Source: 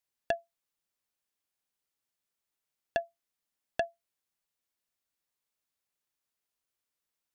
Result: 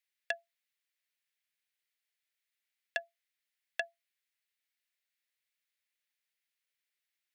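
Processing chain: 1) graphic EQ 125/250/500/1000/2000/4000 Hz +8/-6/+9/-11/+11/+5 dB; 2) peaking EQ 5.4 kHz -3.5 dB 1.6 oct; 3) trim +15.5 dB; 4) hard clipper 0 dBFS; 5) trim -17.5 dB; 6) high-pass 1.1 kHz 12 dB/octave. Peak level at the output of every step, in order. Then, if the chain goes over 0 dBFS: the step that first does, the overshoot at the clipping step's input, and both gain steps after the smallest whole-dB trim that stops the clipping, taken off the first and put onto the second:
-11.0 dBFS, -11.5 dBFS, +4.0 dBFS, 0.0 dBFS, -17.5 dBFS, -17.0 dBFS; step 3, 4.0 dB; step 3 +11.5 dB, step 5 -13.5 dB

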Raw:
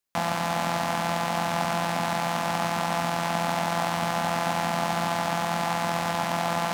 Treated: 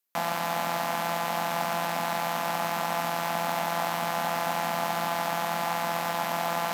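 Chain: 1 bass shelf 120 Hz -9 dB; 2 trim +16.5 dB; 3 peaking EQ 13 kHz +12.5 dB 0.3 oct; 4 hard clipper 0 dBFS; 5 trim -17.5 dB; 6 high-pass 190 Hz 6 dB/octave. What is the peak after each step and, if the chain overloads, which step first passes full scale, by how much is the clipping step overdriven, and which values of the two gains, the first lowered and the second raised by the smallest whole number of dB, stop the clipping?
-11.0 dBFS, +5.5 dBFS, +7.0 dBFS, 0.0 dBFS, -17.5 dBFS, -16.0 dBFS; step 2, 7.0 dB; step 2 +9.5 dB, step 5 -10.5 dB

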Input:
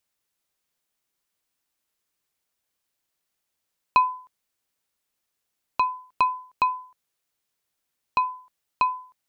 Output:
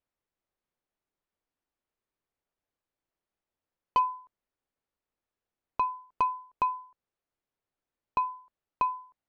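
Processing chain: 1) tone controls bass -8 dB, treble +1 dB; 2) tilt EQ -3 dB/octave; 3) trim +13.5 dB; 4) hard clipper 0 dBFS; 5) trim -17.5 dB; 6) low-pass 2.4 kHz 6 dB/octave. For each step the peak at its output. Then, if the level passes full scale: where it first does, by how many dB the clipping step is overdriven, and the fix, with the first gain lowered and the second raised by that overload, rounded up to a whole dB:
-6.0 dBFS, -7.5 dBFS, +6.0 dBFS, 0.0 dBFS, -17.5 dBFS, -17.5 dBFS; step 3, 6.0 dB; step 3 +7.5 dB, step 5 -11.5 dB

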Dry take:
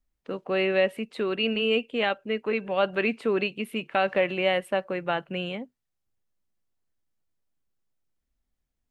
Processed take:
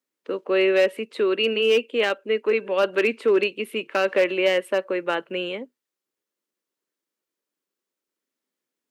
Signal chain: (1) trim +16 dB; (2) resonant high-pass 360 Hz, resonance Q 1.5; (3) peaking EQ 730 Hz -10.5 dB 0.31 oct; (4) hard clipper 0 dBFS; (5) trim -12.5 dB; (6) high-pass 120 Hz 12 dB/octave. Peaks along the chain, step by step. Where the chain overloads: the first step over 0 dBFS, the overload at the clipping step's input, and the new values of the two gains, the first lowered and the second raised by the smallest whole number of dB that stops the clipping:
+5.5 dBFS, +6.0 dBFS, +5.0 dBFS, 0.0 dBFS, -12.5 dBFS, -10.5 dBFS; step 1, 5.0 dB; step 1 +11 dB, step 5 -7.5 dB

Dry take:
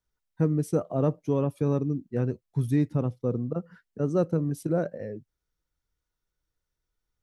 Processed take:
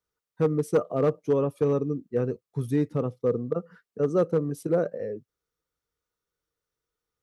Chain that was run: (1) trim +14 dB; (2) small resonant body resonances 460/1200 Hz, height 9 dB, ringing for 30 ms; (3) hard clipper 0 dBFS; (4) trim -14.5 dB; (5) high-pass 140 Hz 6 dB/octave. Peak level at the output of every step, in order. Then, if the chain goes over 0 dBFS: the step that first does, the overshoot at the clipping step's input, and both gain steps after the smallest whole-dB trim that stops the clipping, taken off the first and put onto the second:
+1.5 dBFS, +6.5 dBFS, 0.0 dBFS, -14.5 dBFS, -12.5 dBFS; step 1, 6.5 dB; step 1 +7 dB, step 4 -7.5 dB

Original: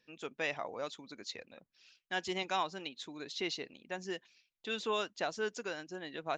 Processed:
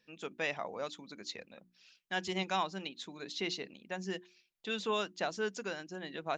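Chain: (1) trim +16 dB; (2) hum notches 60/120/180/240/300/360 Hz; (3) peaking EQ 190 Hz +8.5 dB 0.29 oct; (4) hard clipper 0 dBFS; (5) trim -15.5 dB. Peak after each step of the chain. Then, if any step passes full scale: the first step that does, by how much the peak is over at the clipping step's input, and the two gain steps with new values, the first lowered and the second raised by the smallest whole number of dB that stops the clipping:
-4.0 dBFS, -4.0 dBFS, -4.0 dBFS, -4.0 dBFS, -19.5 dBFS; nothing clips

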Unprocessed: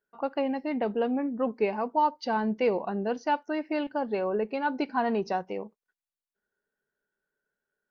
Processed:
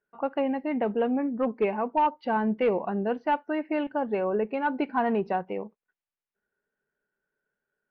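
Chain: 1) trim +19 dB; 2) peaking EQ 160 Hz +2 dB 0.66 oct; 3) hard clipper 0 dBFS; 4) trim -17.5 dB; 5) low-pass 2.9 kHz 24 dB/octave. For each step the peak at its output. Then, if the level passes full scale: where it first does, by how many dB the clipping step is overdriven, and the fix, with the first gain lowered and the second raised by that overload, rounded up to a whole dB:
+4.5 dBFS, +4.5 dBFS, 0.0 dBFS, -17.5 dBFS, -16.5 dBFS; step 1, 4.5 dB; step 1 +14 dB, step 4 -12.5 dB

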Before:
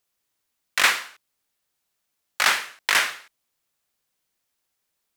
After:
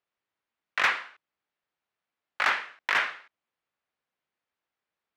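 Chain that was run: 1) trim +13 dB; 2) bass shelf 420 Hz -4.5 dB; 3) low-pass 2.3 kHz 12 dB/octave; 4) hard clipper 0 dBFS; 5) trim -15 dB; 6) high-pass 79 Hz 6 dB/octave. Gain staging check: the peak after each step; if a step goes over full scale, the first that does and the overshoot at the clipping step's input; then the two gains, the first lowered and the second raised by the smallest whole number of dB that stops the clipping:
+9.0 dBFS, +9.0 dBFS, +6.0 dBFS, 0.0 dBFS, -15.0 dBFS, -14.5 dBFS; step 1, 6.0 dB; step 1 +7 dB, step 5 -9 dB

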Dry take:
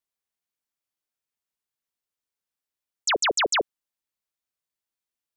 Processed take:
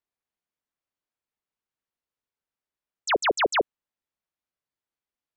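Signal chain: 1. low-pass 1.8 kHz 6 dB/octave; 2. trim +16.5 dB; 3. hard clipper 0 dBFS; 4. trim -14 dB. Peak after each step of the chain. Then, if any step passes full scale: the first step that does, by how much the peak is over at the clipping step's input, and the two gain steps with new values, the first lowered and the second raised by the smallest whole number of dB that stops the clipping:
-18.5 dBFS, -2.0 dBFS, -2.0 dBFS, -16.0 dBFS; nothing clips

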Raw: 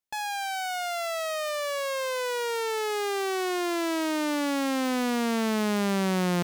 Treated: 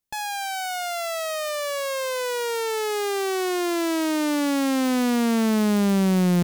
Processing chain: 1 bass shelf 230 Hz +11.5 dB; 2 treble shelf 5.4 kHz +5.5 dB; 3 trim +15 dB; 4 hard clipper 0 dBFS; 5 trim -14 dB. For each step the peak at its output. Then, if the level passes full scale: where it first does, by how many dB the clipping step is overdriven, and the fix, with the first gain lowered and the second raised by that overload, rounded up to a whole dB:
-12.0 dBFS, -12.0 dBFS, +3.0 dBFS, 0.0 dBFS, -14.0 dBFS; step 3, 3.0 dB; step 3 +12 dB, step 5 -11 dB

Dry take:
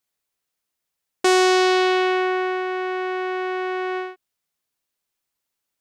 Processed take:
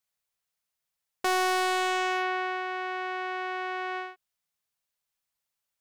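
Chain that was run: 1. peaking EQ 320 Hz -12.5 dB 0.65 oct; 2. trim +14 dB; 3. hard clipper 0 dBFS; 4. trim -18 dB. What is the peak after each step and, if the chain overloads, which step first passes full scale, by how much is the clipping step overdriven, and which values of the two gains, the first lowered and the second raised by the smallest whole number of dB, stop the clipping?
-6.0 dBFS, +8.0 dBFS, 0.0 dBFS, -18.0 dBFS; step 2, 8.0 dB; step 2 +6 dB, step 4 -10 dB

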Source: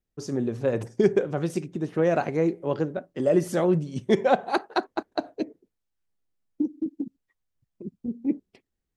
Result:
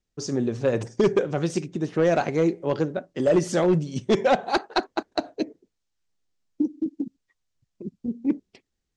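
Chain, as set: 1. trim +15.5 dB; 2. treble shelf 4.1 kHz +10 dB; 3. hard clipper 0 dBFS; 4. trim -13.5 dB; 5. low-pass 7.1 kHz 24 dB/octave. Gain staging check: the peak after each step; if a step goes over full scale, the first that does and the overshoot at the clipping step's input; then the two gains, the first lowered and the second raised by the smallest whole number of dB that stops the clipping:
+8.0 dBFS, +9.0 dBFS, 0.0 dBFS, -13.5 dBFS, -12.5 dBFS; step 1, 9.0 dB; step 1 +6.5 dB, step 4 -4.5 dB

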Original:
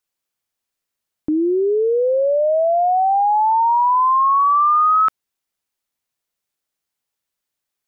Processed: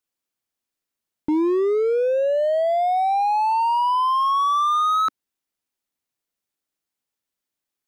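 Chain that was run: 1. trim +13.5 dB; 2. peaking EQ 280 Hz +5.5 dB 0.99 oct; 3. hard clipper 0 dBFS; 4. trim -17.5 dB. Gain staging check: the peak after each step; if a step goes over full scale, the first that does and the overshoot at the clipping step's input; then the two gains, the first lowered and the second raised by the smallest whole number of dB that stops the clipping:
+2.5 dBFS, +4.5 dBFS, 0.0 dBFS, -17.5 dBFS; step 1, 4.5 dB; step 1 +8.5 dB, step 4 -12.5 dB

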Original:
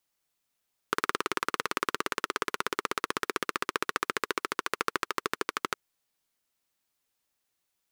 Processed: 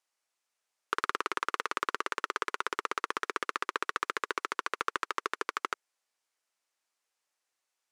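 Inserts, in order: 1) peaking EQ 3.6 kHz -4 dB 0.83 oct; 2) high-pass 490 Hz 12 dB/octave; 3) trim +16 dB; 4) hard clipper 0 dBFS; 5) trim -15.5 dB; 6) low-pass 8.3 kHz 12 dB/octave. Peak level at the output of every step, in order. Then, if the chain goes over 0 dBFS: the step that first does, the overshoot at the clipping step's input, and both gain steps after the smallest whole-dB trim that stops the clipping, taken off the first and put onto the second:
-7.5 dBFS, -8.5 dBFS, +7.5 dBFS, 0.0 dBFS, -15.5 dBFS, -15.0 dBFS; step 3, 7.5 dB; step 3 +8 dB, step 5 -7.5 dB

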